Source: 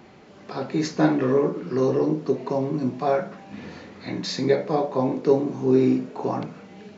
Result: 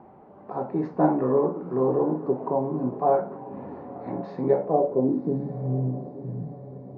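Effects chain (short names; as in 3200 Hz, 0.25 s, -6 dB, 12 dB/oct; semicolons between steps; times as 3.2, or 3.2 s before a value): low-pass sweep 870 Hz -> 140 Hz, 4.62–5.55; on a send: diffused feedback echo 1.029 s, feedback 44%, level -15.5 dB; on the sum: gain -3.5 dB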